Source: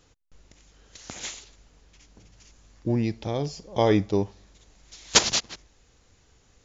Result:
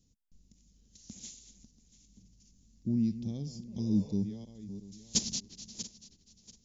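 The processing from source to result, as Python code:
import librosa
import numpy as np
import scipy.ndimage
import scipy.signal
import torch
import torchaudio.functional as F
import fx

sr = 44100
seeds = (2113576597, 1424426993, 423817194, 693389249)

y = fx.reverse_delay_fb(x, sr, ms=343, feedback_pct=44, wet_db=-12)
y = fx.curve_eq(y, sr, hz=(130.0, 220.0, 310.0, 640.0, 1400.0, 5400.0), db=(0, 9, -6, -18, -26, -1))
y = fx.spec_repair(y, sr, seeds[0], start_s=3.81, length_s=0.3, low_hz=430.0, high_hz=3600.0, source='after')
y = y * librosa.db_to_amplitude(-8.0)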